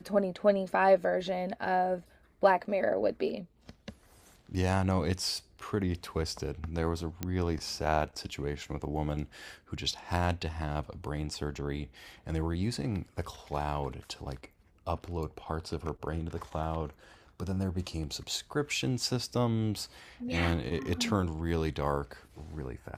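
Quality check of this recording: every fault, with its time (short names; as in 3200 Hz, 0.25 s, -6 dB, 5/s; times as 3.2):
7.23 pop -17 dBFS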